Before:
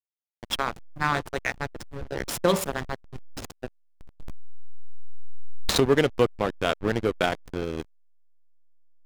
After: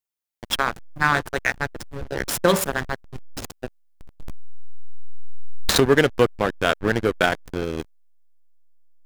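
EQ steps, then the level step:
dynamic equaliser 1,600 Hz, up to +6 dB, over −44 dBFS, Q 3.5
high-shelf EQ 8,200 Hz +5 dB
+3.5 dB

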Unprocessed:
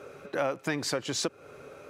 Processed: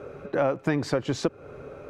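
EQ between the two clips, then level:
spectral tilt −4.5 dB per octave
low-shelf EQ 370 Hz −9 dB
+4.5 dB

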